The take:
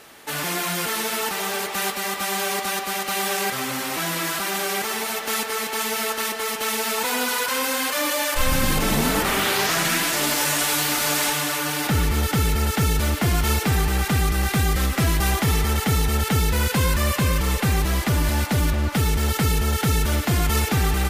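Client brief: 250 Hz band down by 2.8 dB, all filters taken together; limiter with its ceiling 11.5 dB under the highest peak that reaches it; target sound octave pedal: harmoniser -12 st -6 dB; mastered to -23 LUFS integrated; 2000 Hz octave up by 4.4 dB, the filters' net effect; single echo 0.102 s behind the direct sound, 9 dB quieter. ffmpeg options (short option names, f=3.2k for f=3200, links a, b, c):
-filter_complex "[0:a]equalizer=f=250:t=o:g=-4,equalizer=f=2k:t=o:g=5.5,alimiter=limit=-19dB:level=0:latency=1,aecho=1:1:102:0.355,asplit=2[a][b];[b]asetrate=22050,aresample=44100,atempo=2,volume=-6dB[c];[a][c]amix=inputs=2:normalize=0,volume=2.5dB"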